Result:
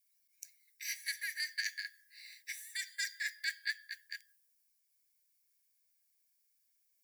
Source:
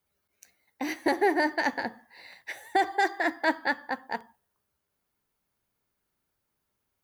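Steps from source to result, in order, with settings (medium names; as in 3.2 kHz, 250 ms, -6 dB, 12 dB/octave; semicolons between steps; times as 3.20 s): rippled Chebyshev high-pass 1.6 kHz, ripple 9 dB; differentiator; band-stop 6.3 kHz, Q 9.8; trim +9.5 dB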